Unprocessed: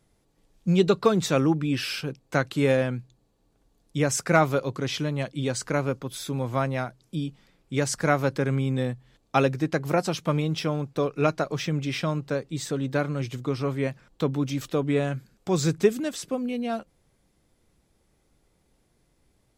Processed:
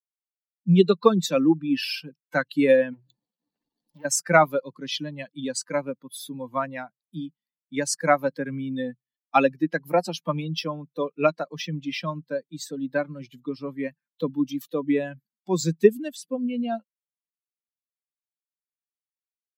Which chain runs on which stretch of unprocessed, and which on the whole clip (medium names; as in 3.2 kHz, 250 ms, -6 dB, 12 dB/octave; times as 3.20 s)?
2.93–4.05 s: low-pass 6.5 kHz + compression 4:1, threshold -43 dBFS + waveshaping leveller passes 5
whole clip: expander on every frequency bin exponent 2; elliptic high-pass 170 Hz, stop band 50 dB; level rider gain up to 8 dB